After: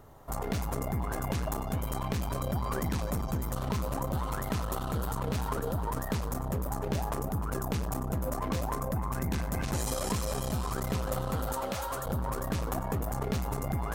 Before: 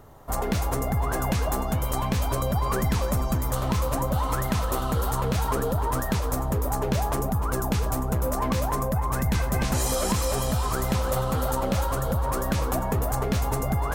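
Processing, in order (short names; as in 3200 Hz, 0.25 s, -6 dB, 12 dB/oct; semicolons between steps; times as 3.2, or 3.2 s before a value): 11.53–12.06 low shelf 290 Hz -12 dB; core saturation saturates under 320 Hz; gain -4 dB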